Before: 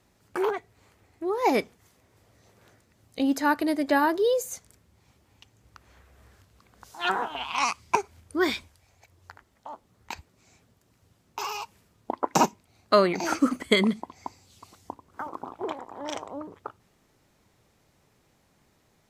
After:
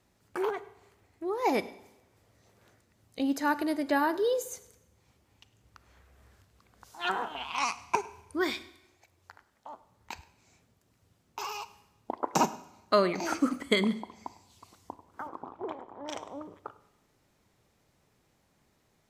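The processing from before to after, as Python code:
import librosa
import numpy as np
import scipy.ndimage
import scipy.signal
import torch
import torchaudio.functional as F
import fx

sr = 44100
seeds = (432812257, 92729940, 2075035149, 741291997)

y = fx.low_shelf(x, sr, hz=180.0, db=-6.5, at=(8.41, 9.67))
y = fx.lowpass(y, sr, hz=fx.line((15.27, 2900.0), (16.07, 1100.0)), slope=6, at=(15.27, 16.07), fade=0.02)
y = y + 10.0 ** (-22.0 / 20.0) * np.pad(y, (int(103 * sr / 1000.0), 0))[:len(y)]
y = fx.rev_schroeder(y, sr, rt60_s=0.9, comb_ms=32, drr_db=16.0)
y = y * 10.0 ** (-4.5 / 20.0)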